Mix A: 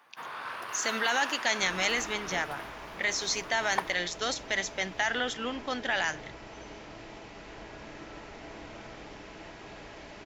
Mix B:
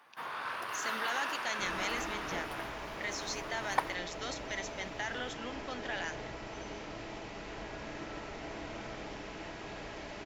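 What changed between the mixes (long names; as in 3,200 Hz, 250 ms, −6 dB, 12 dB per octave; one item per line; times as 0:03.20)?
speech −9.5 dB
second sound: send +6.0 dB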